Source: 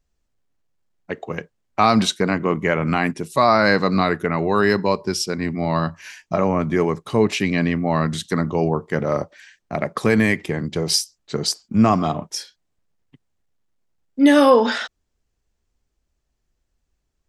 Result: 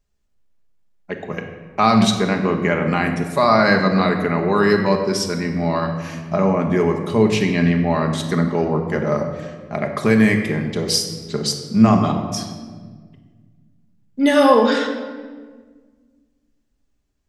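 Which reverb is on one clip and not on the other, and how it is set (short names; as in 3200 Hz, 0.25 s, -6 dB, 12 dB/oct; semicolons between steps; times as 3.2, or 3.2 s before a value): shoebox room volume 1700 m³, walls mixed, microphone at 1.3 m; gain -1 dB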